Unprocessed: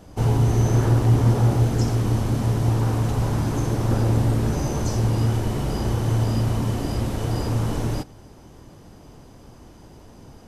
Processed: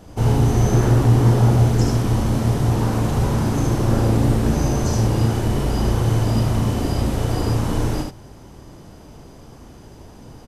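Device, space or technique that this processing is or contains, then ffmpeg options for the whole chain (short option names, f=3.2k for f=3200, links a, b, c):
slapback doubling: -filter_complex "[0:a]asplit=3[a][b][c];[b]adelay=36,volume=-8dB[d];[c]adelay=75,volume=-4dB[e];[a][d][e]amix=inputs=3:normalize=0,volume=2dB"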